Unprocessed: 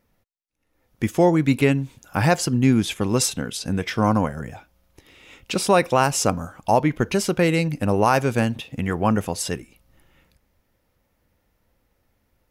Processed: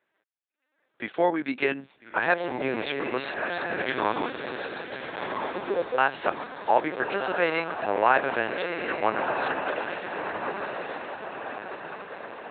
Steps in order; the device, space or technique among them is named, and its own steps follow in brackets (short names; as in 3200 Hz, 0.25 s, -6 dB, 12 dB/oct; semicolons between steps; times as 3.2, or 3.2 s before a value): 4.5–5.99 Chebyshev band-pass 180–520 Hz, order 5; diffused feedback echo 1.343 s, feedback 53%, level -3.5 dB; talking toy (LPC vocoder at 8 kHz pitch kept; HPF 450 Hz 12 dB/oct; bell 1600 Hz +7.5 dB 0.34 oct); gain -2.5 dB